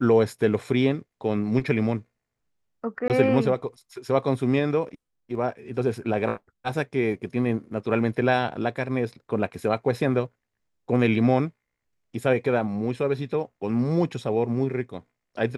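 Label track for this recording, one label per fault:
3.080000	3.100000	drop-out 18 ms

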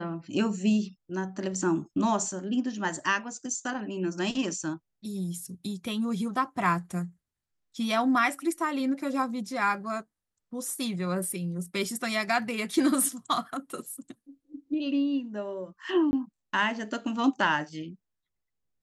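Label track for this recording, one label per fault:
16.110000	16.130000	drop-out 20 ms

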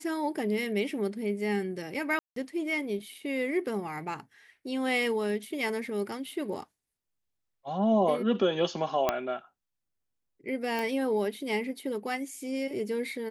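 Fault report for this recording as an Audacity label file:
2.190000	2.360000	drop-out 173 ms
9.090000	9.090000	click −11 dBFS
10.790000	10.790000	click

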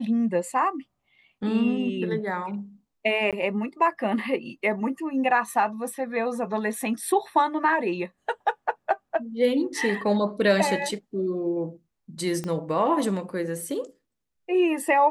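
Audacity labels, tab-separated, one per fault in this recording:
3.310000	3.330000	drop-out 17 ms
12.440000	12.440000	click −19 dBFS

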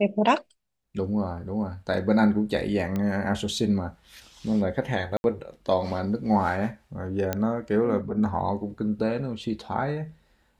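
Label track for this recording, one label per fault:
2.960000	2.960000	click −17 dBFS
5.170000	5.240000	drop-out 71 ms
7.330000	7.330000	click −11 dBFS

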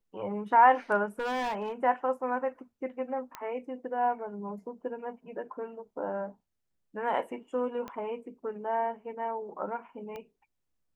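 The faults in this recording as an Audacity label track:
1.190000	1.720000	clipping −28.5 dBFS
3.350000	3.350000	click −22 dBFS
7.880000	7.880000	click −25 dBFS
10.160000	10.160000	click −28 dBFS

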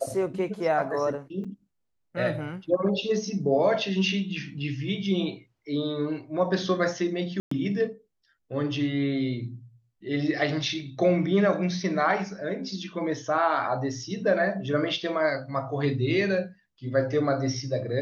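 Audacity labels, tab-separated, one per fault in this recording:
1.440000	1.450000	drop-out 5.5 ms
7.400000	7.510000	drop-out 114 ms

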